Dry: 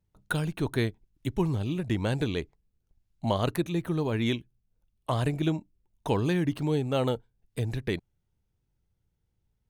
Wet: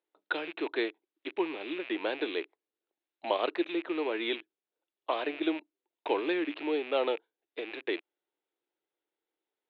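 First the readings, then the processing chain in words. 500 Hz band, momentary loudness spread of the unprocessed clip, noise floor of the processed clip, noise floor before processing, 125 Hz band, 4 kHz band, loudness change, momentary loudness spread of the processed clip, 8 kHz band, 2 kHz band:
−0.5 dB, 9 LU, below −85 dBFS, −78 dBFS, below −35 dB, 0.0 dB, −3.5 dB, 10 LU, below −30 dB, +1.5 dB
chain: loose part that buzzes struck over −43 dBFS, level −31 dBFS
Chebyshev band-pass filter 320–3,800 Hz, order 4

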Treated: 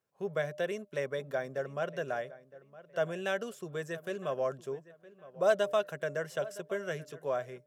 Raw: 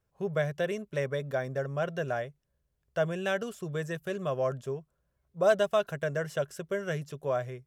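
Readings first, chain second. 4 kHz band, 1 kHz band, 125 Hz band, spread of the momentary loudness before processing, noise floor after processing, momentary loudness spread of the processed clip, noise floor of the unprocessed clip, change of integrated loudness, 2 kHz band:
−2.5 dB, −2.5 dB, −9.5 dB, 9 LU, −65 dBFS, 12 LU, −78 dBFS, −3.0 dB, −2.5 dB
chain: high-pass filter 210 Hz 12 dB per octave
hum removal 300.6 Hz, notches 2
on a send: feedback echo with a low-pass in the loop 963 ms, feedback 28%, low-pass 2,600 Hz, level −18 dB
on the sum: level −2.5 dB

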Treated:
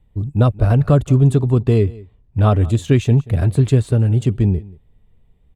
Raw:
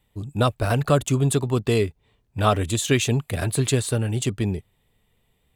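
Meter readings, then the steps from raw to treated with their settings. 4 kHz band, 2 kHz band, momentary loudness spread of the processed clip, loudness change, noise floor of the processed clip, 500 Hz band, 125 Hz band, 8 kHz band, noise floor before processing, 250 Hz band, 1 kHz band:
−7.5 dB, −4.5 dB, 5 LU, +6.5 dB, −55 dBFS, +3.0 dB, +9.5 dB, below −10 dB, −68 dBFS, +6.5 dB, −0.5 dB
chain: spectral tilt −3.5 dB per octave
on a send: single-tap delay 182 ms −21.5 dB
on the sum: level −1 dB

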